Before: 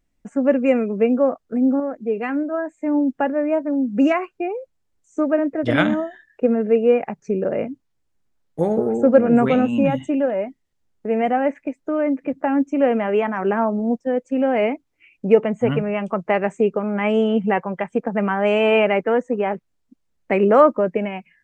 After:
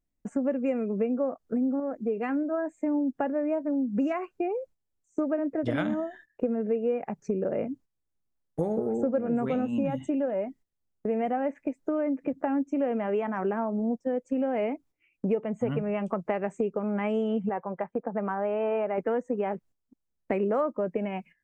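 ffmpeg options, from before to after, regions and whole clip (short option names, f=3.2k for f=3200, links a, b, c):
-filter_complex "[0:a]asettb=1/sr,asplit=3[a][b][c];[a]atrim=end=17.494[d];[b]atrim=start=17.49:end=18.98,asetpts=PTS-STARTPTS,afade=t=in:d=0.004:c=qsin,afade=t=out:st=1.486:d=0.004:c=qsin,agate=range=-8dB:threshold=-42dB:ratio=16:release=100:detection=peak,lowpass=1.3k,lowshelf=f=400:g=-10[e];[c]atrim=start=18.976[f];[d][e]acrossfade=d=0.004:c1=hsin:c2=qsin[g];[g][f]acrossfade=d=0.004:c1=qsin:c2=hsin,agate=range=-11dB:threshold=-45dB:ratio=16:detection=peak,equalizer=f=2.7k:t=o:w=2.3:g=-5.5,acompressor=threshold=-26dB:ratio=4"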